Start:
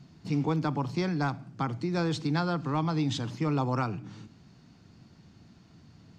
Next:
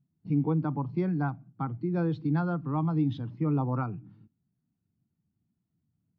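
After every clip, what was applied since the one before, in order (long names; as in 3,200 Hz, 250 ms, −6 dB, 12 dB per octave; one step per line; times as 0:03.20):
noise gate −46 dBFS, range −7 dB
low-pass filter 3,300 Hz 12 dB per octave
every bin expanded away from the loudest bin 1.5 to 1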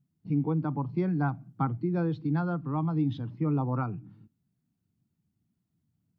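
speech leveller 0.5 s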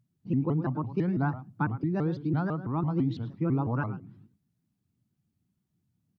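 slap from a distant wall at 18 metres, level −14 dB
pitch modulation by a square or saw wave saw up 6 Hz, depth 250 cents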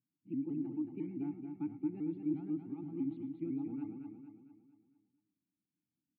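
formant filter u
phaser with its sweep stopped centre 2,400 Hz, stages 4
on a send: repeating echo 227 ms, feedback 47%, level −6 dB
on the sum: level −1 dB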